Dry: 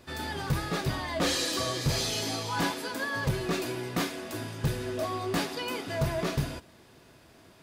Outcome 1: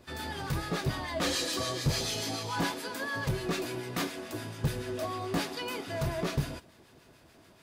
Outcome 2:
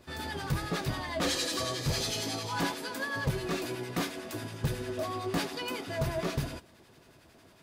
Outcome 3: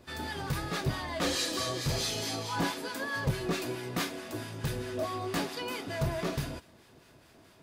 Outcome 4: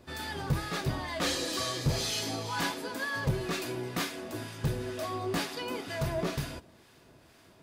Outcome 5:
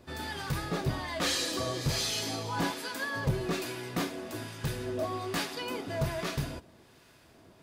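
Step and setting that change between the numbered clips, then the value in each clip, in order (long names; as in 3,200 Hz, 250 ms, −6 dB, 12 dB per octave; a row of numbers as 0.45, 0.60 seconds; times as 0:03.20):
two-band tremolo in antiphase, speed: 6.9, 11, 4.6, 2.1, 1.2 Hertz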